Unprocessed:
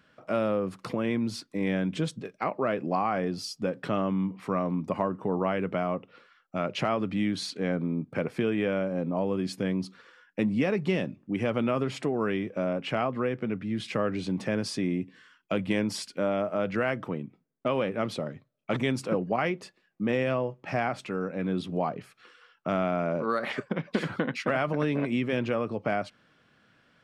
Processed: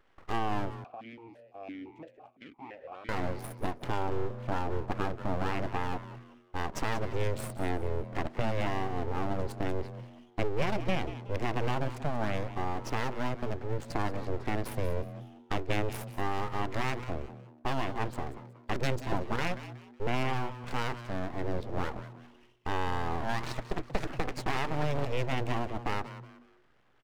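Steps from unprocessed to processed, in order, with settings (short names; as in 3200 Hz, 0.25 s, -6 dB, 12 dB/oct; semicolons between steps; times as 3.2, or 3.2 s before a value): Wiener smoothing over 15 samples; dynamic EQ 890 Hz, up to -4 dB, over -38 dBFS, Q 0.95; full-wave rectifier; frequency-shifting echo 0.184 s, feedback 31%, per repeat +120 Hz, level -14 dB; 0.84–3.09 vowel sequencer 5.9 Hz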